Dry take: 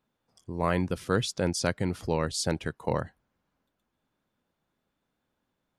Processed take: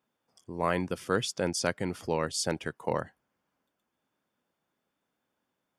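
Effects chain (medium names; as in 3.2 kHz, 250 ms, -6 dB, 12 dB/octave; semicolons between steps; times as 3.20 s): high-pass 240 Hz 6 dB/octave; band-stop 4 kHz, Q 8.4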